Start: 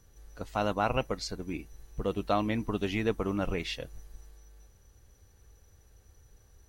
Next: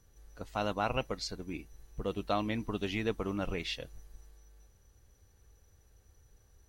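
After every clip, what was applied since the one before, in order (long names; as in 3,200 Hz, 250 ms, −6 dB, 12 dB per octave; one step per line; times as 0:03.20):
dynamic equaliser 3,800 Hz, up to +4 dB, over −49 dBFS, Q 1
level −4 dB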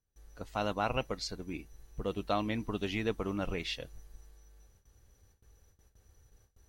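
noise gate with hold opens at −53 dBFS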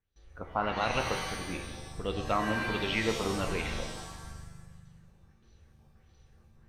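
auto-filter low-pass sine 1.5 Hz 930–4,200 Hz
reverb with rising layers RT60 1.2 s, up +7 semitones, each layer −2 dB, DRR 5 dB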